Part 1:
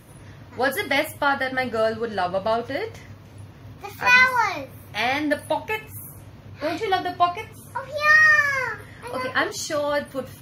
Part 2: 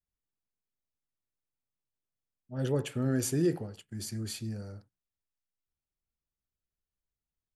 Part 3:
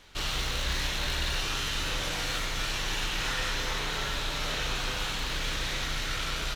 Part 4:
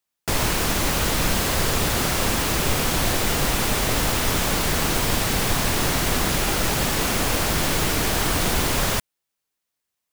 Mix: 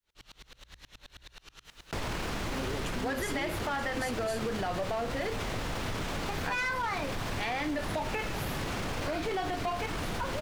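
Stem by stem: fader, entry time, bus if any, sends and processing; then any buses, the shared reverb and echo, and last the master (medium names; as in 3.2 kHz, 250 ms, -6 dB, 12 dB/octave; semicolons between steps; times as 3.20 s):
+0.5 dB, 2.45 s, bus A, no send, high-pass 89 Hz 24 dB/octave; saturation -18 dBFS, distortion -10 dB
+2.5 dB, 0.00 s, bus B, no send, static phaser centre 330 Hz, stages 4
-14.0 dB, 0.00 s, bus B, no send, sawtooth tremolo in dB swelling 9.4 Hz, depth 33 dB
-4.5 dB, 1.65 s, bus A, no send, peak limiter -19 dBFS, peak gain reduction 10.5 dB; treble shelf 9.1 kHz -9 dB; level flattener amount 50%
bus A: 0.0 dB, treble shelf 6.3 kHz -10 dB; peak limiter -21.5 dBFS, peak gain reduction 7 dB
bus B: 0.0 dB, hum notches 60/120 Hz; peak limiter -29 dBFS, peak gain reduction 12.5 dB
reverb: none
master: compression, threshold -29 dBFS, peak gain reduction 5.5 dB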